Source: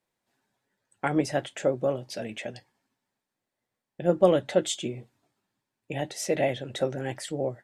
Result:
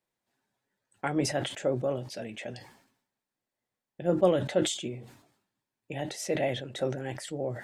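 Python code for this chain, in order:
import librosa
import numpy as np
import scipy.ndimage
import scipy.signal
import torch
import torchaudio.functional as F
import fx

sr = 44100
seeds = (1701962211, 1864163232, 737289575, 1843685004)

y = fx.sustainer(x, sr, db_per_s=84.0)
y = y * librosa.db_to_amplitude(-4.0)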